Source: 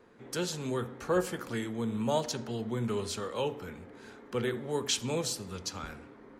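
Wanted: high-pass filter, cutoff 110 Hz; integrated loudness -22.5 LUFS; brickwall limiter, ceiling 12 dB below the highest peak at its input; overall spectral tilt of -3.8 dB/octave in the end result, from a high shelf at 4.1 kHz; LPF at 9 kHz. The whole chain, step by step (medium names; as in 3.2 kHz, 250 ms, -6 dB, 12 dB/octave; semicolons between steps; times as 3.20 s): high-pass 110 Hz; low-pass 9 kHz; treble shelf 4.1 kHz +8.5 dB; trim +12.5 dB; peak limiter -11.5 dBFS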